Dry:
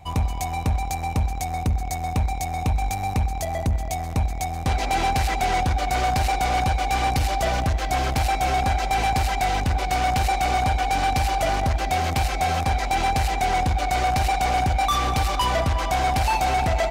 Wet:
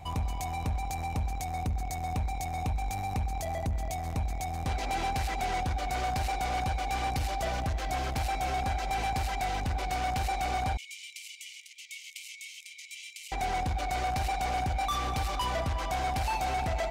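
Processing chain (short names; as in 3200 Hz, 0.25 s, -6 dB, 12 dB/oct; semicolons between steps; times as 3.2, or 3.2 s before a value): limiter -26 dBFS, peak gain reduction 9 dB; 10.77–13.32 rippled Chebyshev high-pass 2100 Hz, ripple 6 dB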